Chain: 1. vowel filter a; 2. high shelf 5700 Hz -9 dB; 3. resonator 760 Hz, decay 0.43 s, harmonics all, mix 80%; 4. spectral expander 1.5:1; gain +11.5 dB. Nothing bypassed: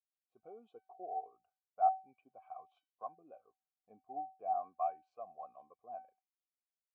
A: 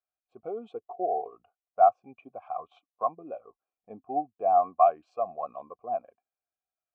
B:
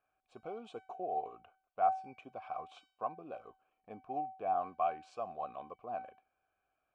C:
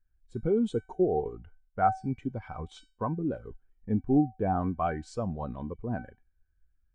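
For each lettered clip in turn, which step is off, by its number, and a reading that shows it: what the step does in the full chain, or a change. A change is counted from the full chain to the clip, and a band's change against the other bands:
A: 3, crest factor change -2.0 dB; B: 4, crest factor change -2.5 dB; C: 1, crest factor change -5.0 dB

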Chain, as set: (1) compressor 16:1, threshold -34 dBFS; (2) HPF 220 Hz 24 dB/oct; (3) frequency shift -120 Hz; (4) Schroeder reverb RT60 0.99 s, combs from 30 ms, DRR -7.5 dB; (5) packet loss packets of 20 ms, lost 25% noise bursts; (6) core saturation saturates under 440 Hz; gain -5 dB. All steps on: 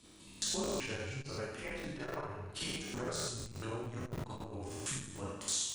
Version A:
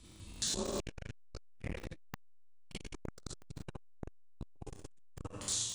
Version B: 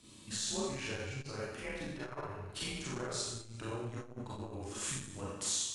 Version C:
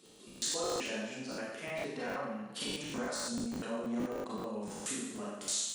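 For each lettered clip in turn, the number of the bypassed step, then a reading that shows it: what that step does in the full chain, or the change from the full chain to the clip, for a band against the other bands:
2, 2 kHz band -4.0 dB; 5, crest factor change -2.0 dB; 3, 125 Hz band -10.0 dB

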